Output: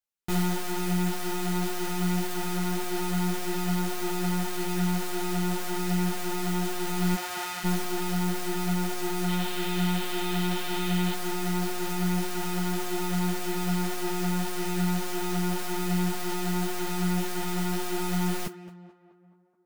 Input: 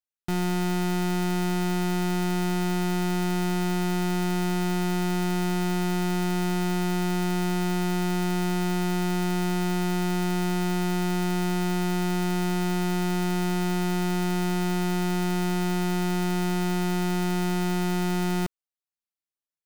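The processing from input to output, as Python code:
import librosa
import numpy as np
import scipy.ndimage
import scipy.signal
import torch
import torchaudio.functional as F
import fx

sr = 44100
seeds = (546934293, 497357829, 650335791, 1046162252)

y = fx.highpass(x, sr, hz=fx.line((7.14, 390.0), (7.63, 1200.0)), slope=12, at=(7.14, 7.63), fade=0.02)
y = fx.rider(y, sr, range_db=10, speed_s=0.5)
y = fx.lowpass_res(y, sr, hz=3500.0, q=2.7, at=(9.28, 11.14))
y = fx.mod_noise(y, sr, seeds[0], snr_db=12)
y = fx.echo_tape(y, sr, ms=214, feedback_pct=68, wet_db=-4.0, lp_hz=2000.0, drive_db=34.0, wow_cents=12)
y = fx.ensemble(y, sr)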